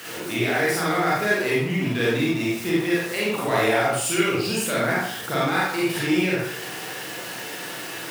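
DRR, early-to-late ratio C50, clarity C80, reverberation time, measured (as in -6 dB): -7.0 dB, -2.0 dB, 3.5 dB, 0.60 s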